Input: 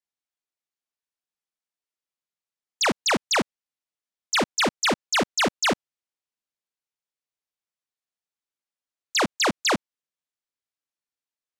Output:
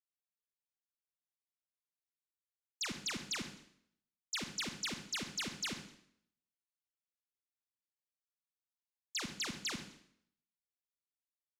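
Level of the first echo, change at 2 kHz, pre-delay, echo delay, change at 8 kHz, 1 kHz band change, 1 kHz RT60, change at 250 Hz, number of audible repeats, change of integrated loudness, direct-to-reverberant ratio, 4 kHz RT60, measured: -18.0 dB, -17.5 dB, 36 ms, 129 ms, -13.0 dB, -24.0 dB, 0.65 s, -17.5 dB, 2, -16.0 dB, 7.0 dB, 0.65 s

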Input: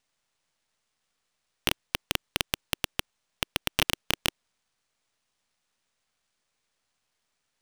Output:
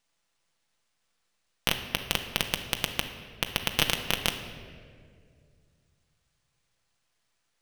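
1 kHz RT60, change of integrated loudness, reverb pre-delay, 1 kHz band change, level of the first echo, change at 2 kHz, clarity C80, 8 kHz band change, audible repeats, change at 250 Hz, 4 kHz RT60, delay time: 1.7 s, +1.0 dB, 6 ms, +1.0 dB, no echo, +1.5 dB, 9.5 dB, +1.0 dB, no echo, +1.5 dB, 1.3 s, no echo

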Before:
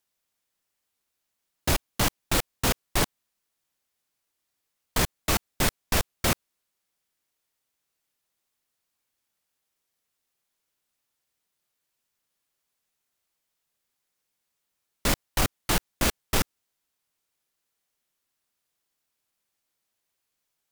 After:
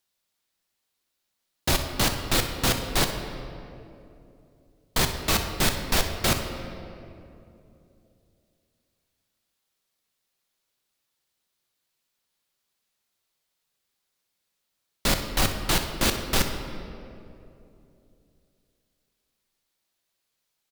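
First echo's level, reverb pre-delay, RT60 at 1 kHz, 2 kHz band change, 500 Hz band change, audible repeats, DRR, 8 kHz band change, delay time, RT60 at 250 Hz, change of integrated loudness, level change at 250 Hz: -14.5 dB, 5 ms, 2.4 s, +2.0 dB, +2.0 dB, 1, 4.5 dB, +1.5 dB, 62 ms, 3.4 s, +1.5 dB, +2.0 dB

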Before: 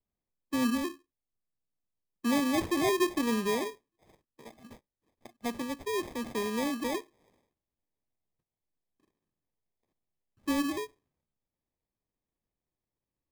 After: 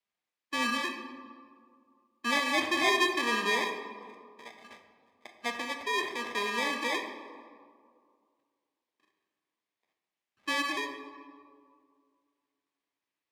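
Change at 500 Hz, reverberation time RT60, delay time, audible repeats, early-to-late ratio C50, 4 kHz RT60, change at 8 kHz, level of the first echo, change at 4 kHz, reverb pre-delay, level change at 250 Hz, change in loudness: -2.5 dB, 2.2 s, no echo, no echo, 7.0 dB, 1.1 s, 0.0 dB, no echo, +7.5 dB, 3 ms, -7.5 dB, +1.5 dB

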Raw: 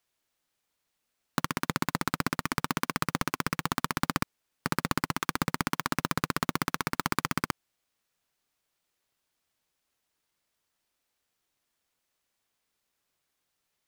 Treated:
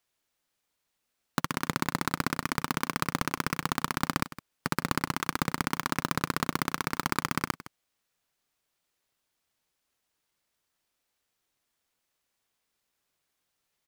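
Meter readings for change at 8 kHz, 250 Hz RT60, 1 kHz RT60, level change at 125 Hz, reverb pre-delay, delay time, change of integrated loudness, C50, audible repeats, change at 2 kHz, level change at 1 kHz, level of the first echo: 0.0 dB, no reverb, no reverb, 0.0 dB, no reverb, 162 ms, 0.0 dB, no reverb, 1, 0.0 dB, 0.0 dB, -15.5 dB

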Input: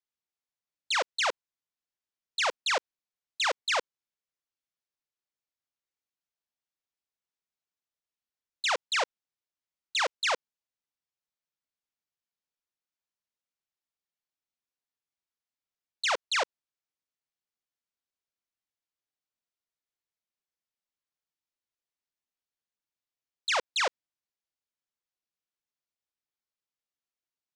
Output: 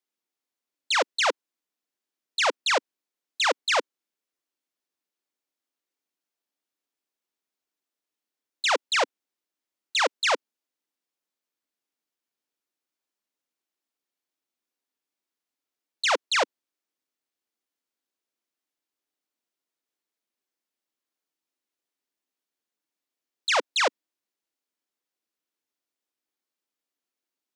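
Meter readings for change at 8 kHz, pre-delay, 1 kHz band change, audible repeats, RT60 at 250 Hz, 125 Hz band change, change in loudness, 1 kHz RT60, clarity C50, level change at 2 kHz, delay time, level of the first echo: +4.0 dB, no reverb, +4.5 dB, no echo, no reverb, no reading, +4.5 dB, no reverb, no reverb, +4.0 dB, no echo, no echo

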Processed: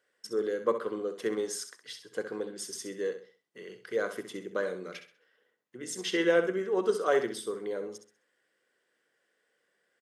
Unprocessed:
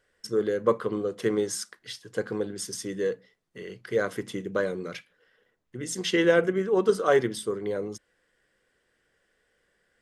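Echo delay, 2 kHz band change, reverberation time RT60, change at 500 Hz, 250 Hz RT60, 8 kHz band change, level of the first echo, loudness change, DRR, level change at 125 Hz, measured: 65 ms, -4.0 dB, no reverb, -4.5 dB, no reverb, -4.0 dB, -10.0 dB, -4.5 dB, no reverb, -12.5 dB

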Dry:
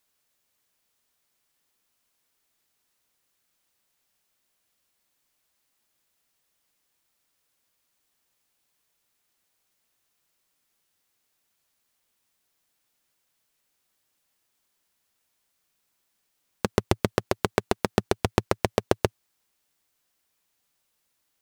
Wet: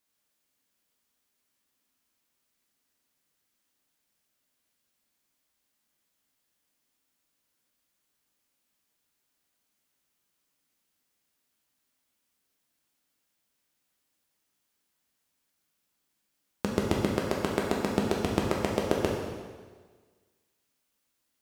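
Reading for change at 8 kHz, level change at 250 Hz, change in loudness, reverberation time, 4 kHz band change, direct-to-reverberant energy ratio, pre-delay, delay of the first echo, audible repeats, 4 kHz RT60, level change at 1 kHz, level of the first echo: -3.0 dB, +0.5 dB, -2.0 dB, 1.5 s, -3.0 dB, -1.5 dB, 4 ms, no echo, no echo, 1.4 s, -3.5 dB, no echo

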